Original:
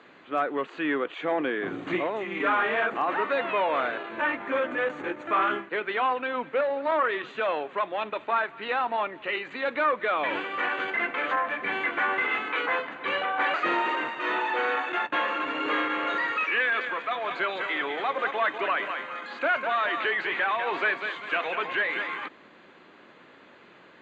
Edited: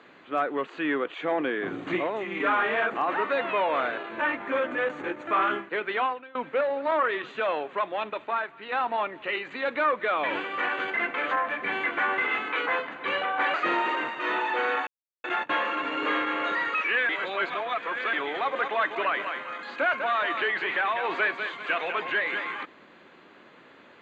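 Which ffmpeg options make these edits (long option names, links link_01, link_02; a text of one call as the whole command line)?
ffmpeg -i in.wav -filter_complex "[0:a]asplit=6[link_01][link_02][link_03][link_04][link_05][link_06];[link_01]atrim=end=6.35,asetpts=PTS-STARTPTS,afade=type=out:start_time=6.03:duration=0.32:curve=qua:silence=0.0944061[link_07];[link_02]atrim=start=6.35:end=8.72,asetpts=PTS-STARTPTS,afade=type=in:duration=0.004:curve=hsin:silence=0.0944061,afade=type=out:start_time=1.62:duration=0.75:silence=0.446684[link_08];[link_03]atrim=start=8.72:end=14.87,asetpts=PTS-STARTPTS,afade=type=in:duration=0.004:curve=hsin:silence=0.446684,afade=type=out:start_time=6.146:duration=0.004:curve=hsin,apad=pad_dur=0.37[link_09];[link_04]atrim=start=14.87:end=16.722,asetpts=PTS-STARTPTS,afade=type=in:duration=0.004:curve=hsin[link_10];[link_05]atrim=start=16.718:end=17.762,asetpts=PTS-STARTPTS,areverse[link_11];[link_06]atrim=start=17.758[link_12];[link_07][link_08][link_09][link_10]concat=n=4:v=0:a=1[link_13];[link_13][link_11]acrossfade=duration=0.004:curve1=hsin:curve2=hsin[link_14];[link_14][link_12]acrossfade=duration=0.004:curve1=hsin:curve2=hsin" out.wav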